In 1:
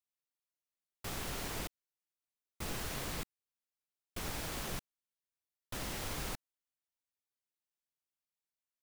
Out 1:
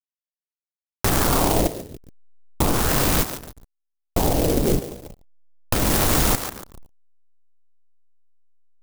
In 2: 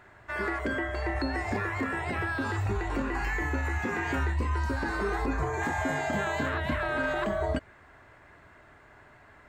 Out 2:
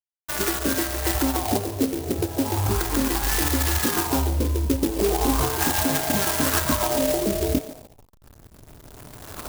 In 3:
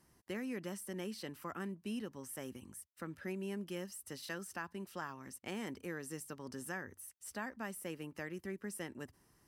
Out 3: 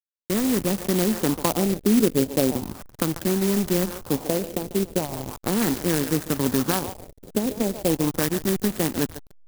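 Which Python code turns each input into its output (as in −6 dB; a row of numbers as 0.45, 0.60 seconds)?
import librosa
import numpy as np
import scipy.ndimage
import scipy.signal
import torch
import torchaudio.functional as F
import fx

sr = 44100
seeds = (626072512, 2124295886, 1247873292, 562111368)

p1 = fx.rattle_buzz(x, sr, strikes_db=-31.0, level_db=-31.0)
p2 = fx.recorder_agc(p1, sr, target_db=-25.5, rise_db_per_s=8.0, max_gain_db=30)
p3 = scipy.signal.sosfilt(scipy.signal.butter(2, 8100.0, 'lowpass', fs=sr, output='sos'), p2)
p4 = fx.dynamic_eq(p3, sr, hz=290.0, q=4.4, threshold_db=-51.0, ratio=4.0, max_db=5)
p5 = fx.level_steps(p4, sr, step_db=10)
p6 = p4 + (p5 * librosa.db_to_amplitude(0.5))
p7 = fx.comb_fb(p6, sr, f0_hz=54.0, decay_s=1.1, harmonics='all', damping=0.0, mix_pct=30)
p8 = p7 + fx.echo_thinned(p7, sr, ms=142, feedback_pct=77, hz=1100.0, wet_db=-4.5, dry=0)
p9 = fx.backlash(p8, sr, play_db=-33.0)
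p10 = fx.filter_lfo_lowpass(p9, sr, shape='sine', hz=0.37, low_hz=430.0, high_hz=3200.0, q=2.1)
p11 = fx.clock_jitter(p10, sr, seeds[0], jitter_ms=0.13)
y = p11 * 10.0 ** (-24 / 20.0) / np.sqrt(np.mean(np.square(p11)))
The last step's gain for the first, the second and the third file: +16.0, +3.0, +12.5 decibels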